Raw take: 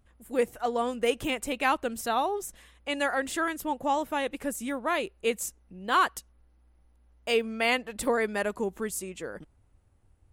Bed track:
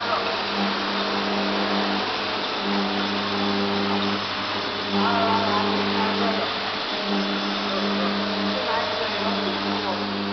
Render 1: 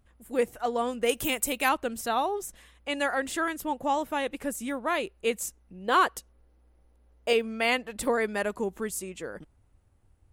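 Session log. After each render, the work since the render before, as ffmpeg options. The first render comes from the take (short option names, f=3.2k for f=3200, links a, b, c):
-filter_complex "[0:a]asettb=1/sr,asplit=3[a][b][c];[a]atrim=end=1.094[d];[b]atrim=start=1.09:end=1.69,asetpts=PTS-STARTPTS,afade=t=in:d=0.004:c=qsin,afade=t=out:st=0.596:d=0.004:c=qsin,aemphasis=mode=production:type=50fm[e];[c]atrim=start=1.686[f];[d][e]acrossfade=d=0.004:c1=hsin:c2=qsin[g];[g][f]acrossfade=d=0.004:c1=qsin:c2=hsin,asettb=1/sr,asplit=3[h][i][j];[h]atrim=end=5.874[k];[i]atrim=start=5.87:end=7.33,asetpts=PTS-STARTPTS,afade=t=in:d=0.004:c=qsin,afade=t=out:st=1.456:d=0.004:c=qsin,equalizer=f=470:w=1.5:g=7.5[l];[j]atrim=start=7.326[m];[k][l]acrossfade=d=0.004:c1=hsin:c2=qsin[n];[n][m]acrossfade=d=0.004:c1=qsin:c2=hsin"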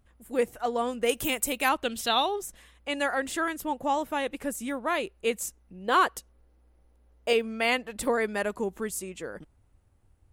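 -filter_complex "[0:a]asettb=1/sr,asplit=3[a][b][c];[a]atrim=end=1.834[d];[b]atrim=start=1.83:end=2.36,asetpts=PTS-STARTPTS,afade=t=in:d=0.004:c=qsin,afade=t=out:st=0.526:d=0.004:c=qsin,equalizer=f=3.4k:w=1.5:g=14.5[e];[c]atrim=start=2.356[f];[d][e]acrossfade=d=0.004:c1=hsin:c2=qsin[g];[g][f]acrossfade=d=0.004:c1=qsin:c2=hsin"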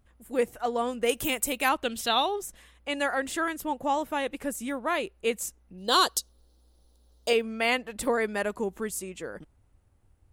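-filter_complex "[0:a]asplit=3[a][b][c];[a]afade=t=out:st=5.77:d=0.02[d];[b]highshelf=f=3k:t=q:w=3:g=10,afade=t=in:st=5.77:d=0.02,afade=t=out:st=7.28:d=0.02[e];[c]afade=t=in:st=7.28:d=0.02[f];[d][e][f]amix=inputs=3:normalize=0"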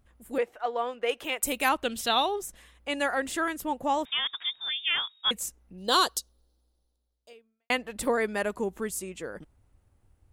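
-filter_complex "[0:a]asettb=1/sr,asplit=3[a][b][c];[a]atrim=end=0.384[d];[b]atrim=start=0.38:end=1.43,asetpts=PTS-STARTPTS,afade=t=in:d=0.004:c=qsin,afade=t=out:st=1.046:d=0.004:c=qsin,acrossover=split=380 4200:gain=0.1 1 0.112[e][f][g];[e][f][g]amix=inputs=3:normalize=0[h];[c]atrim=start=1.426[i];[d][h]acrossfade=d=0.004:c1=hsin:c2=qsin[j];[j][i]acrossfade=d=0.004:c1=qsin:c2=hsin,asettb=1/sr,asplit=3[k][l][m];[k]atrim=end=4.054[n];[l]atrim=start=4.05:end=5.31,asetpts=PTS-STARTPTS,afade=t=in:d=0.004:c=qsin,afade=t=out:st=1.256:d=0.004:c=qsin,lowpass=f=3.2k:t=q:w=0.5098,lowpass=f=3.2k:t=q:w=0.6013,lowpass=f=3.2k:t=q:w=0.9,lowpass=f=3.2k:t=q:w=2.563,afreqshift=-3800[o];[m]atrim=start=5.306[p];[n][o]acrossfade=d=0.004:c1=hsin:c2=qsin[q];[q][p]acrossfade=d=0.004:c1=qsin:c2=hsin,asplit=2[r][s];[r]atrim=end=7.7,asetpts=PTS-STARTPTS,afade=t=out:st=5.89:d=1.81:c=qua[t];[s]atrim=start=7.7,asetpts=PTS-STARTPTS,afade=t=in:d=0.004:c=hsin[u];[t][u]concat=n=2:v=0:a=1"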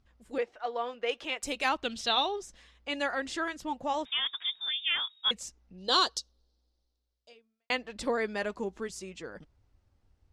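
-af "flanger=delay=0.8:depth=4:regen=-70:speed=0.54:shape=triangular,lowpass=f=5.2k:t=q:w=2"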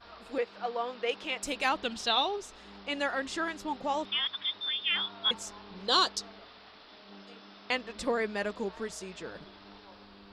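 -filter_complex "[1:a]volume=-27dB[a];[0:a][a]amix=inputs=2:normalize=0"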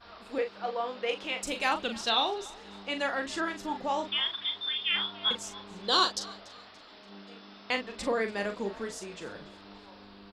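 -filter_complex "[0:a]asplit=2[a][b];[b]adelay=40,volume=-7.5dB[c];[a][c]amix=inputs=2:normalize=0,asplit=4[d][e][f][g];[e]adelay=288,afreqshift=51,volume=-21dB[h];[f]adelay=576,afreqshift=102,volume=-28.7dB[i];[g]adelay=864,afreqshift=153,volume=-36.5dB[j];[d][h][i][j]amix=inputs=4:normalize=0"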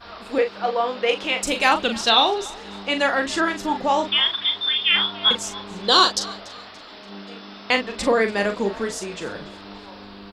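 -af "volume=10.5dB,alimiter=limit=-3dB:level=0:latency=1"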